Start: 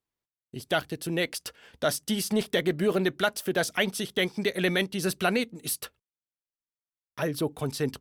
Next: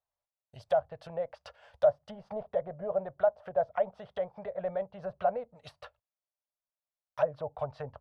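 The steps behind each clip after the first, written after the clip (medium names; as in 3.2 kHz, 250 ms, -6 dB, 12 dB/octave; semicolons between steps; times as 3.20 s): low-pass that closes with the level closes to 680 Hz, closed at -24.5 dBFS; FFT filter 100 Hz 0 dB, 340 Hz -26 dB, 590 Hz +11 dB, 2.2 kHz -6 dB, 4.8 kHz -6 dB, 8.3 kHz -11 dB; trim -3.5 dB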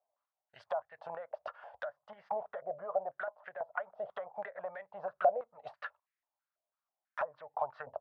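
compression 2.5:1, threshold -40 dBFS, peak gain reduction 14 dB; step-sequenced band-pass 6.1 Hz 650–1900 Hz; trim +14 dB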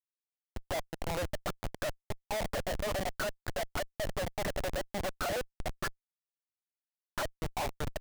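self-modulated delay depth 0.4 ms; Schmitt trigger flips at -43.5 dBFS; trim +8.5 dB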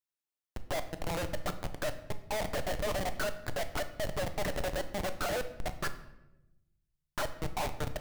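simulated room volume 350 m³, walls mixed, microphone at 0.44 m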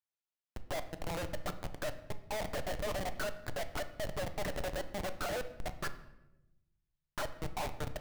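median filter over 5 samples; trim -3.5 dB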